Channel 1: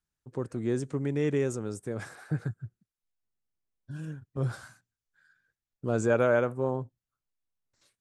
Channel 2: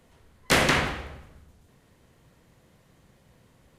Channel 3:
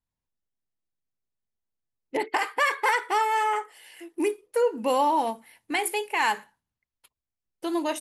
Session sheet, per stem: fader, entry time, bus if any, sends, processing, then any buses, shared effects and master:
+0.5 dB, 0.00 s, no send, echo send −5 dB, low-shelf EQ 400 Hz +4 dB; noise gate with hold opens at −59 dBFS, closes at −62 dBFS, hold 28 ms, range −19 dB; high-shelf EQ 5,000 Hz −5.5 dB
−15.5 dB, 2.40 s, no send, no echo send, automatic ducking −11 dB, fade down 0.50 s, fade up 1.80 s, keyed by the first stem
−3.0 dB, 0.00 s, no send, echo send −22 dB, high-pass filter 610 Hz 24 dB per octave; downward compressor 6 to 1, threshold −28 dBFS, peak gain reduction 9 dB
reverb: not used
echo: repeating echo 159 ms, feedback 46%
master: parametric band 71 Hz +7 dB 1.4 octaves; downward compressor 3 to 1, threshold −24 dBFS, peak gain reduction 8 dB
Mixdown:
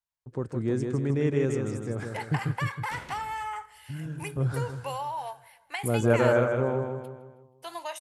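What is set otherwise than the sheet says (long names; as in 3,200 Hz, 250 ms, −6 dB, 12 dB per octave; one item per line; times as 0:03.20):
stem 1: missing low-shelf EQ 400 Hz +4 dB
master: missing downward compressor 3 to 1, threshold −24 dBFS, peak gain reduction 8 dB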